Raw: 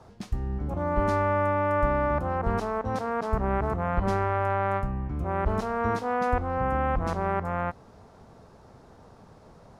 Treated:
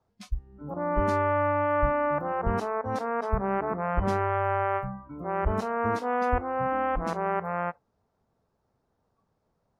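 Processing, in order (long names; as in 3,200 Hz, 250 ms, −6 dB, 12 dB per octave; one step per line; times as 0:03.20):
noise reduction from a noise print of the clip's start 23 dB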